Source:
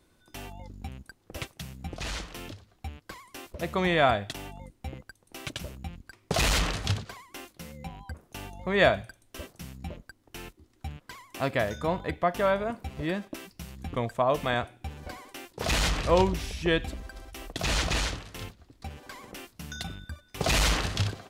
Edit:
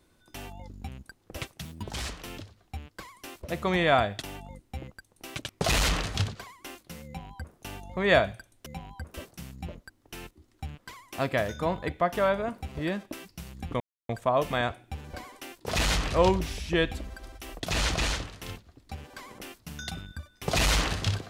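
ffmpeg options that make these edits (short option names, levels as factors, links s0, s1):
-filter_complex "[0:a]asplit=7[s0][s1][s2][s3][s4][s5][s6];[s0]atrim=end=1.654[s7];[s1]atrim=start=1.65:end=2.21,asetpts=PTS-STARTPTS,asetrate=54684,aresample=44100,atrim=end_sample=19916,asetpts=PTS-STARTPTS[s8];[s2]atrim=start=2.206:end=5.602[s9];[s3]atrim=start=6.188:end=9.362[s10];[s4]atrim=start=7.758:end=8.242[s11];[s5]atrim=start=9.358:end=14.02,asetpts=PTS-STARTPTS,afade=t=out:st=4.658:d=0.004:c=hsin,apad=pad_dur=0.29[s12];[s6]atrim=start=14.02,asetpts=PTS-STARTPTS,afade=t=in:d=0.004:c=hsin[s13];[s7][s8]acrossfade=d=0.004:c1=hsin:c2=hsin[s14];[s14][s9]acrossfade=d=0.004:c1=hsin:c2=hsin[s15];[s15][s10]acrossfade=d=0.004:c1=hsin:c2=hsin[s16];[s16][s11]acrossfade=d=0.004:c1=hsin:c2=hsin[s17];[s12][s13]concat=n=2:v=0:a=1[s18];[s17][s18]acrossfade=d=0.004:c1=hsin:c2=hsin"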